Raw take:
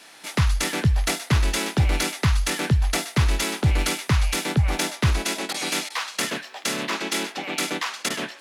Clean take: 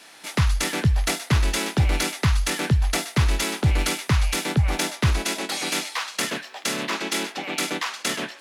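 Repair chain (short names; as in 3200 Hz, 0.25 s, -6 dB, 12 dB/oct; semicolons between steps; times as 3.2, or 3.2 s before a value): interpolate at 5.53/5.89/8.09, 11 ms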